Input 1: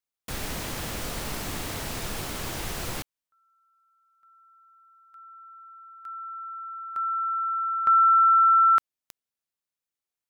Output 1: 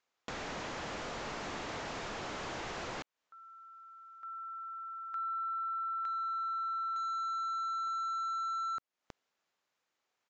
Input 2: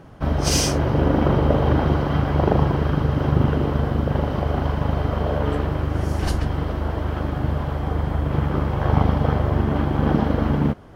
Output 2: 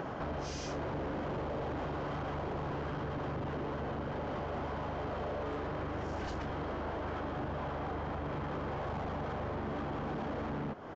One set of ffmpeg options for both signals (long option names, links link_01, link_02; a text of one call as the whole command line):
ffmpeg -i in.wav -filter_complex "[0:a]asoftclip=type=tanh:threshold=-13dB,asplit=2[link_01][link_02];[link_02]highpass=frequency=720:poles=1,volume=25dB,asoftclip=type=tanh:threshold=-13dB[link_03];[link_01][link_03]amix=inputs=2:normalize=0,lowpass=frequency=1100:poles=1,volume=-6dB,aemphasis=mode=production:type=50fm,acompressor=threshold=-33dB:ratio=16:attack=2:release=599:knee=1:detection=peak,highshelf=frequency=4100:gain=-7.5,aresample=16000,aresample=44100" out.wav